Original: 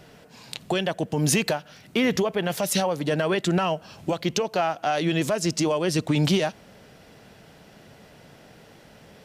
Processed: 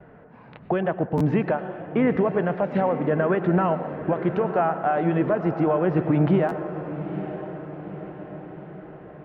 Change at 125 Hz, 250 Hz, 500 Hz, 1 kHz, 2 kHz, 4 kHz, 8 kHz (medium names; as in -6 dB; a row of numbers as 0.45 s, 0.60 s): +2.5 dB, +2.5 dB, +2.5 dB, +2.5 dB, -2.5 dB, under -15 dB, under -35 dB